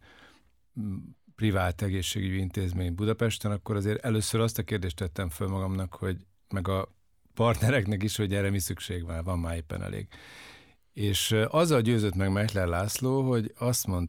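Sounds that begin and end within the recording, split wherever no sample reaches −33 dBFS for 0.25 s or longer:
0:00.77–0:00.98
0:01.41–0:06.17
0:06.53–0:06.84
0:07.37–0:10.03

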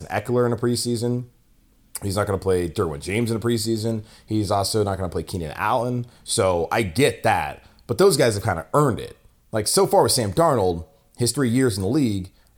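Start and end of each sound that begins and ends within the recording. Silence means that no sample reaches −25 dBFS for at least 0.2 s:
0:01.95–0:03.99
0:04.31–0:06.02
0:06.29–0:07.51
0:07.89–0:09.06
0:09.54–0:10.81
0:11.20–0:12.22

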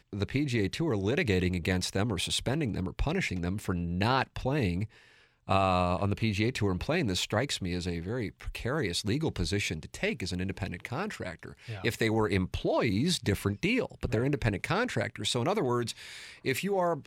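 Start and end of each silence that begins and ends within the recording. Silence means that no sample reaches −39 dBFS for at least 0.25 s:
0:04.86–0:05.49

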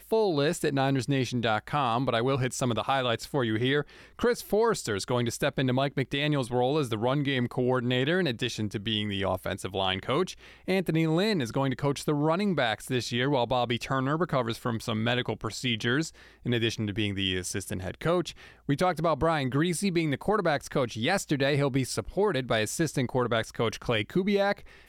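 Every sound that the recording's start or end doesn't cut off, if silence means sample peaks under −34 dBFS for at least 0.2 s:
0:04.19–0:10.33
0:10.68–0:16.08
0:16.46–0:18.30
0:18.69–0:24.59

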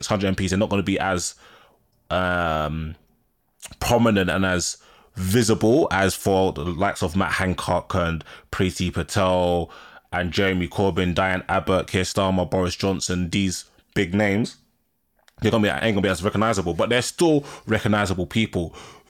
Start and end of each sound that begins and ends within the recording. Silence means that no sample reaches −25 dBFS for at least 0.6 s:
0:02.11–0:02.92
0:03.65–0:14.47

